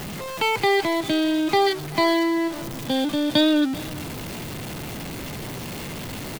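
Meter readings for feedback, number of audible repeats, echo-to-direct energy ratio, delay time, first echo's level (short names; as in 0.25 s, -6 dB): no steady repeat, 1, -20.0 dB, 0.395 s, -20.0 dB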